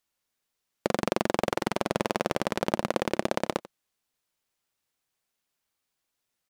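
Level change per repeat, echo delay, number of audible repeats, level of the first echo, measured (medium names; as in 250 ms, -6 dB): no regular repeats, 90 ms, 1, -18.0 dB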